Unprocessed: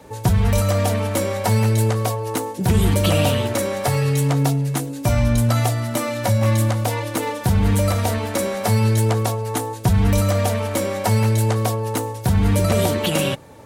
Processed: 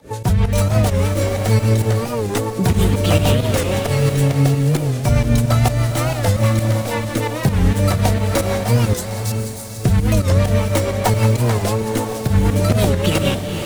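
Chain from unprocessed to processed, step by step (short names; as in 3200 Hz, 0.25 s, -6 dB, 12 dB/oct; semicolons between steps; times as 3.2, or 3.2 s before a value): tracing distortion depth 0.07 ms; 8.94–9.8 inverse Chebyshev high-pass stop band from 2100 Hz, stop band 40 dB; in parallel at -1 dB: compressor, threshold -26 dBFS, peak gain reduction 13.5 dB; on the sum: rotary speaker horn 6.3 Hz; pump 132 bpm, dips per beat 2, -15 dB, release 0.111 s; diffused feedback echo 0.484 s, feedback 41%, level -6 dB; record warp 45 rpm, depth 160 cents; gain +2 dB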